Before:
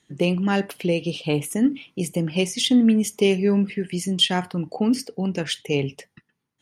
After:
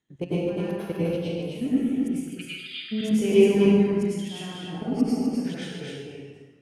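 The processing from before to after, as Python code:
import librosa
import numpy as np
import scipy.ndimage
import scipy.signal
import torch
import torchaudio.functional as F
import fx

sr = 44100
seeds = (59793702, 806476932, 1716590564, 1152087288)

y = fx.high_shelf(x, sr, hz=2600.0, db=-9.0)
y = fx.level_steps(y, sr, step_db=19)
y = fx.brickwall_bandpass(y, sr, low_hz=1200.0, high_hz=5000.0, at=(2.11, 2.91), fade=0.02)
y = y + 10.0 ** (-3.5 / 20.0) * np.pad(y, (int(254 * sr / 1000.0), 0))[:len(y)]
y = fx.rev_plate(y, sr, seeds[0], rt60_s=1.2, hf_ratio=0.8, predelay_ms=85, drr_db=-9.5)
y = y * librosa.db_to_amplitude(-7.0)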